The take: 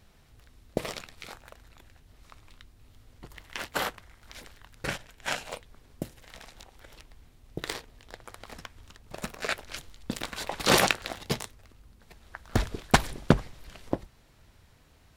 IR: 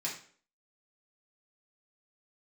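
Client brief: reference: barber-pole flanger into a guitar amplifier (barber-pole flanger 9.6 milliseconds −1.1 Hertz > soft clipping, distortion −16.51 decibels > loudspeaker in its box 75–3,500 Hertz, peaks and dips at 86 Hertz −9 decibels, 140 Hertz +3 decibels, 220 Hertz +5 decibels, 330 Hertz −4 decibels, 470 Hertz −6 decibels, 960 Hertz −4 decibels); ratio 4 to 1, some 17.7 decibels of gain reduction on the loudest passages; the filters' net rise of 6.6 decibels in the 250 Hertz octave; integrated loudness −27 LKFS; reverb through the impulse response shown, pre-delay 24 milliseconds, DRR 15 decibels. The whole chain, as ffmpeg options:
-filter_complex "[0:a]equalizer=frequency=250:width_type=o:gain=6,acompressor=threshold=-35dB:ratio=4,asplit=2[link_01][link_02];[1:a]atrim=start_sample=2205,adelay=24[link_03];[link_02][link_03]afir=irnorm=-1:irlink=0,volume=-18dB[link_04];[link_01][link_04]amix=inputs=2:normalize=0,asplit=2[link_05][link_06];[link_06]adelay=9.6,afreqshift=-1.1[link_07];[link_05][link_07]amix=inputs=2:normalize=1,asoftclip=threshold=-29dB,highpass=75,equalizer=frequency=86:width_type=q:width=4:gain=-9,equalizer=frequency=140:width_type=q:width=4:gain=3,equalizer=frequency=220:width_type=q:width=4:gain=5,equalizer=frequency=330:width_type=q:width=4:gain=-4,equalizer=frequency=470:width_type=q:width=4:gain=-6,equalizer=frequency=960:width_type=q:width=4:gain=-4,lowpass=frequency=3500:width=0.5412,lowpass=frequency=3500:width=1.3066,volume=20.5dB"

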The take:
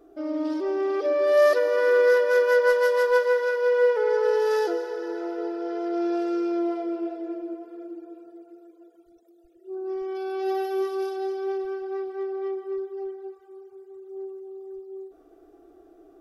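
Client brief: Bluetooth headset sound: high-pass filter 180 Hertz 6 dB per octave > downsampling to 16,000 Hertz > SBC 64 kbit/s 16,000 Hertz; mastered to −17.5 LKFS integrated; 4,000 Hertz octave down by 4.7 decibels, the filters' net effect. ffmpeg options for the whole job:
ffmpeg -i in.wav -af "highpass=frequency=180:poles=1,equalizer=frequency=4000:width_type=o:gain=-6.5,aresample=16000,aresample=44100,volume=7.5dB" -ar 16000 -c:a sbc -b:a 64k out.sbc

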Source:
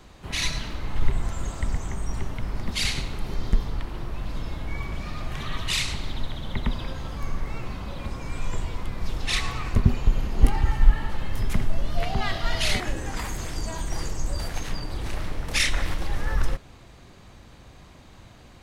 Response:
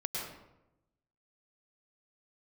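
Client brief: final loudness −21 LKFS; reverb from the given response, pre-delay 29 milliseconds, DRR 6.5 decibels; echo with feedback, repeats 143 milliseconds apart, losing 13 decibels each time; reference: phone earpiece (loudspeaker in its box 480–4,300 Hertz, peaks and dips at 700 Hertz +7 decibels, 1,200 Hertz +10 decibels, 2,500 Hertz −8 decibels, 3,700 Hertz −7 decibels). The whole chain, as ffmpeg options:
-filter_complex "[0:a]aecho=1:1:143|286|429:0.224|0.0493|0.0108,asplit=2[link_01][link_02];[1:a]atrim=start_sample=2205,adelay=29[link_03];[link_02][link_03]afir=irnorm=-1:irlink=0,volume=-10dB[link_04];[link_01][link_04]amix=inputs=2:normalize=0,highpass=480,equalizer=frequency=700:width_type=q:width=4:gain=7,equalizer=frequency=1200:width_type=q:width=4:gain=10,equalizer=frequency=2500:width_type=q:width=4:gain=-8,equalizer=frequency=3700:width_type=q:width=4:gain=-7,lowpass=frequency=4300:width=0.5412,lowpass=frequency=4300:width=1.3066,volume=12dB"

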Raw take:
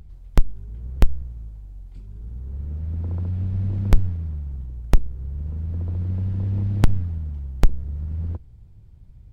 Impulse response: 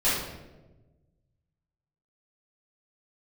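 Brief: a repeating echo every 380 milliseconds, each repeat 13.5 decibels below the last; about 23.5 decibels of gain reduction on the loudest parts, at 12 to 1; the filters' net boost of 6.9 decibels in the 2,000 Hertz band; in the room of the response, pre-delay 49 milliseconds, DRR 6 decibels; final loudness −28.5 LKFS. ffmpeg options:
-filter_complex "[0:a]equalizer=frequency=2000:width_type=o:gain=8.5,acompressor=threshold=-31dB:ratio=12,aecho=1:1:380|760:0.211|0.0444,asplit=2[link_01][link_02];[1:a]atrim=start_sample=2205,adelay=49[link_03];[link_02][link_03]afir=irnorm=-1:irlink=0,volume=-19.5dB[link_04];[link_01][link_04]amix=inputs=2:normalize=0,volume=7dB"

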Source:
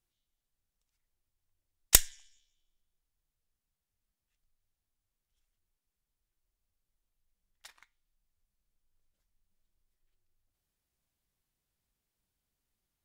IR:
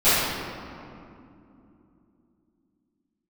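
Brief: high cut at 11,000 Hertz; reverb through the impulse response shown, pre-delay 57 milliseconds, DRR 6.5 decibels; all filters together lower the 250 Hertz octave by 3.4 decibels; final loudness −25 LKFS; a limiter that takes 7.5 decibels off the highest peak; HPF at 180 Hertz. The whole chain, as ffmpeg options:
-filter_complex "[0:a]highpass=180,lowpass=11000,equalizer=frequency=250:width_type=o:gain=-3,alimiter=limit=-11dB:level=0:latency=1,asplit=2[link_01][link_02];[1:a]atrim=start_sample=2205,adelay=57[link_03];[link_02][link_03]afir=irnorm=-1:irlink=0,volume=-28dB[link_04];[link_01][link_04]amix=inputs=2:normalize=0,volume=8.5dB"

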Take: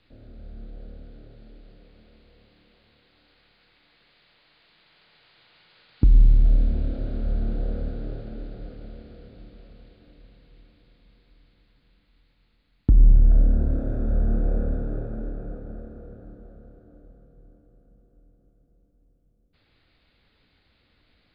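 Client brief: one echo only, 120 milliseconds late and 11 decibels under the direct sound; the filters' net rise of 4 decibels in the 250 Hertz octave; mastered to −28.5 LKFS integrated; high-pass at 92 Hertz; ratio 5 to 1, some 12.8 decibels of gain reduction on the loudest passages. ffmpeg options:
ffmpeg -i in.wav -af "highpass=92,equalizer=frequency=250:width_type=o:gain=5,acompressor=threshold=-32dB:ratio=5,aecho=1:1:120:0.282,volume=10.5dB" out.wav

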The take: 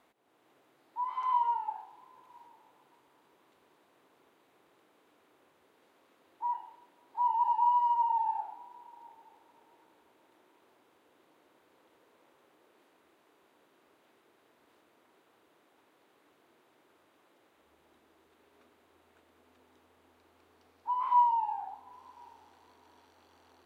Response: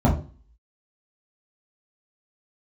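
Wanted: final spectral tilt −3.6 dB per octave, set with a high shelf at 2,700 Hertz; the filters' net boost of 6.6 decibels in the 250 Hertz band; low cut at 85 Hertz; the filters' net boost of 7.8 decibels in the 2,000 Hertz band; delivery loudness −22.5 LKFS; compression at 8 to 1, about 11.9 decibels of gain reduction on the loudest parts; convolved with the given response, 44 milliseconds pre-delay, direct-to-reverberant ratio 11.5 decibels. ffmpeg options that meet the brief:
-filter_complex "[0:a]highpass=85,equalizer=frequency=250:width_type=o:gain=8.5,equalizer=frequency=2000:width_type=o:gain=6,highshelf=frequency=2700:gain=8,acompressor=threshold=-30dB:ratio=8,asplit=2[link_01][link_02];[1:a]atrim=start_sample=2205,adelay=44[link_03];[link_02][link_03]afir=irnorm=-1:irlink=0,volume=-28dB[link_04];[link_01][link_04]amix=inputs=2:normalize=0,volume=12.5dB"

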